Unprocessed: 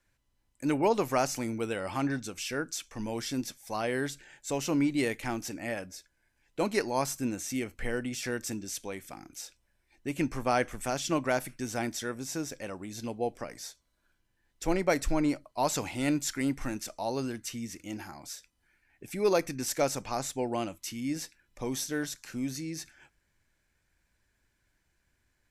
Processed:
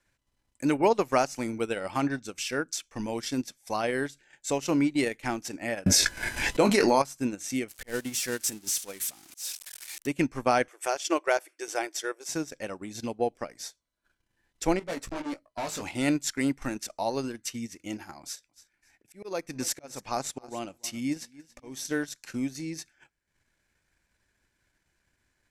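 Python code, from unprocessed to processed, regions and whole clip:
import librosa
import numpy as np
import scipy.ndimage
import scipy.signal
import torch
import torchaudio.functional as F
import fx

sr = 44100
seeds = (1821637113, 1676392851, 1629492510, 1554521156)

y = fx.chain(x, sr, fx.doubler(ms=20.0, db=-8.0),
    fx.env_flatten(amount_pct=100), at=(5.86, 7.02))
y = fx.chain(y, sr, fx.crossing_spikes(level_db=-26.5),
    fx.auto_swell(attack_ms=145.0),
    fx.upward_expand(threshold_db=-41.0, expansion=1.5), at=(7.68, 10.07))
y = fx.chain(y, sr, fx.brickwall_highpass(low_hz=300.0),
    fx.notch(hz=3900.0, q=12.0), at=(10.68, 12.29))
y = fx.chain(y, sr, fx.tube_stage(drive_db=34.0, bias=0.65),
    fx.doubler(ms=18.0, db=-5.0), at=(14.79, 15.82))
y = fx.chain(y, sr, fx.auto_swell(attack_ms=434.0),
    fx.echo_feedback(ms=279, feedback_pct=25, wet_db=-16.5), at=(18.21, 21.85))
y = scipy.signal.sosfilt(scipy.signal.butter(2, 12000.0, 'lowpass', fs=sr, output='sos'), y)
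y = fx.low_shelf(y, sr, hz=100.0, db=-6.5)
y = fx.transient(y, sr, attack_db=3, sustain_db=-11)
y = y * 10.0 ** (2.5 / 20.0)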